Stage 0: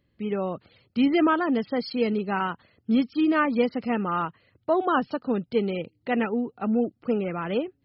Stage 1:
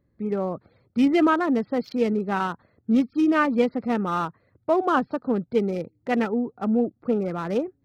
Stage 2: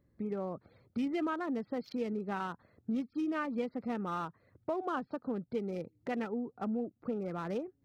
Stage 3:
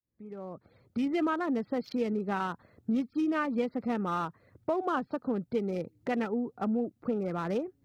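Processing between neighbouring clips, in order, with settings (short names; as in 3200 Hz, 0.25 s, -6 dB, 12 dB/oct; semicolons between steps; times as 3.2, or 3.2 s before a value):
Wiener smoothing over 15 samples; gain +2 dB
compressor 2.5:1, threshold -35 dBFS, peak gain reduction 13 dB; gain -2.5 dB
opening faded in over 1.22 s; gain +5 dB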